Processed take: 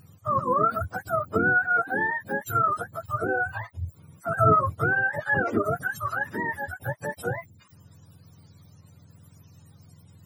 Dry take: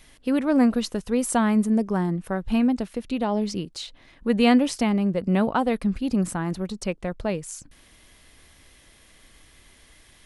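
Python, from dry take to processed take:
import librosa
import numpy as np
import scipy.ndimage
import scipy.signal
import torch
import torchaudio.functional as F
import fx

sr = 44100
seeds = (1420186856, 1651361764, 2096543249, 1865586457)

y = fx.octave_mirror(x, sr, pivot_hz=560.0)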